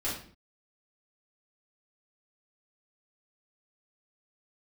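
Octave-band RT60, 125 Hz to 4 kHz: 0.60, 0.65, 0.50, 0.45, 0.45, 0.40 seconds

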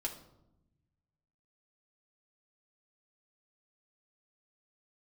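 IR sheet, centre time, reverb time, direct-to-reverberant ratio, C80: 17 ms, 0.85 s, −1.0 dB, 13.0 dB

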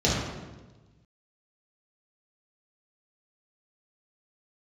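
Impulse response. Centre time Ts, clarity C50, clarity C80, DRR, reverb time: 78 ms, 0.0 dB, 3.0 dB, −7.0 dB, 1.2 s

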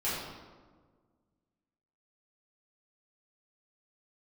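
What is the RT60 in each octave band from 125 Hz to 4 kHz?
2.0, 2.0, 1.7, 1.4, 1.0, 0.85 seconds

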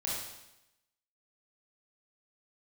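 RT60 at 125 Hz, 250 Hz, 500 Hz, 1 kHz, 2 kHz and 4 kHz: 0.90, 0.90, 0.90, 0.90, 0.90, 0.90 seconds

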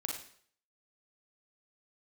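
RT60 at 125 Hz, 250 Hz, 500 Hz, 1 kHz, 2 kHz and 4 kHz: 0.55, 0.55, 0.60, 0.55, 0.55, 0.55 seconds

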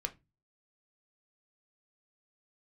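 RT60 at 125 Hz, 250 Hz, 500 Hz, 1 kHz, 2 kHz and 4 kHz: 0.50, 0.40, 0.25, 0.20, 0.20, 0.20 seconds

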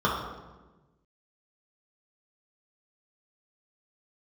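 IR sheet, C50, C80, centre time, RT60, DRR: 2.0 dB, 4.5 dB, 59 ms, 1.2 s, −6.0 dB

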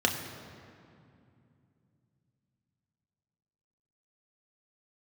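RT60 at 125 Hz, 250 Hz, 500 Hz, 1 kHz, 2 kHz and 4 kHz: 4.5, 3.8, 2.7, 2.4, 2.1, 1.6 seconds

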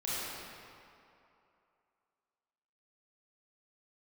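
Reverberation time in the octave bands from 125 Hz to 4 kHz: 2.2, 2.4, 2.7, 2.8, 2.3, 1.7 seconds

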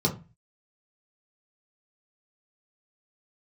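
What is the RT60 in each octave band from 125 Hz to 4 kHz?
0.50, 0.40, 0.30, 0.30, 0.30, 0.20 seconds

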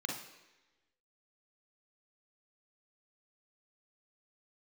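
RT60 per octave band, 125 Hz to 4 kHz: 0.85, 1.0, 1.1, 1.1, 1.2, 1.1 seconds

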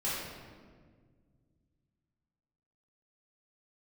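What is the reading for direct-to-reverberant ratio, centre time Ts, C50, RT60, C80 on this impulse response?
−10.5 dB, 101 ms, −2.0 dB, 1.7 s, 1.0 dB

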